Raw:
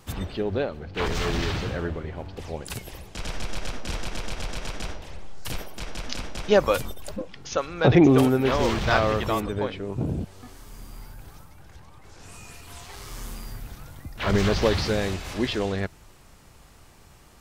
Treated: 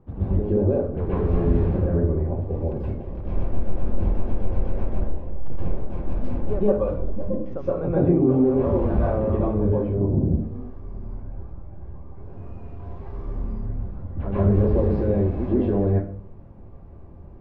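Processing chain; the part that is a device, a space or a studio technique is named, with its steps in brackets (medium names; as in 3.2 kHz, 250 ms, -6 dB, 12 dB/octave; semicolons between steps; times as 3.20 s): television next door (compression 4:1, threshold -25 dBFS, peak gain reduction 11.5 dB; low-pass 530 Hz 12 dB/octave; reverberation RT60 0.45 s, pre-delay 117 ms, DRR -9 dB)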